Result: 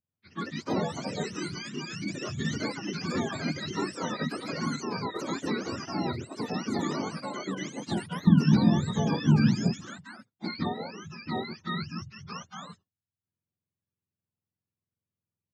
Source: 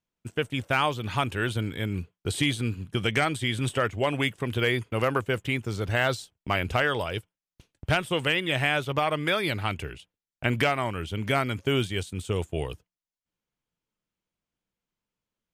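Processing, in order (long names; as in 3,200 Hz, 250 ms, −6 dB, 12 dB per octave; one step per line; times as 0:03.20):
frequency axis turned over on the octave scale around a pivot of 720 Hz
delay with pitch and tempo change per echo 115 ms, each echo +4 semitones, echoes 2
low-pass that shuts in the quiet parts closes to 2,600 Hz, open at −20 dBFS
0:08.27–0:09.77: bass and treble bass +14 dB, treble +4 dB
level −7 dB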